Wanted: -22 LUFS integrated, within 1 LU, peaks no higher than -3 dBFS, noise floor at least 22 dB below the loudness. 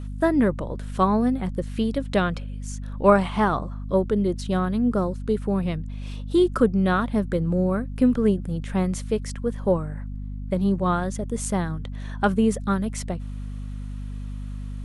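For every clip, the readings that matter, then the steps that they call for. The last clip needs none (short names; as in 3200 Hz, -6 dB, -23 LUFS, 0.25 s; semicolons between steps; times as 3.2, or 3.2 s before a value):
hum 50 Hz; harmonics up to 250 Hz; hum level -30 dBFS; loudness -24.0 LUFS; peak -4.0 dBFS; loudness target -22.0 LUFS
-> notches 50/100/150/200/250 Hz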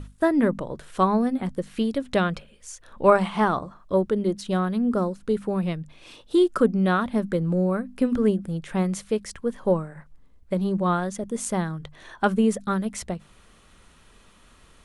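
hum none; loudness -24.5 LUFS; peak -4.5 dBFS; loudness target -22.0 LUFS
-> gain +2.5 dB; limiter -3 dBFS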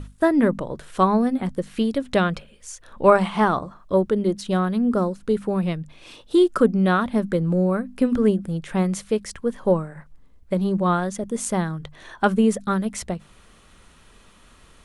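loudness -22.0 LUFS; peak -3.0 dBFS; noise floor -52 dBFS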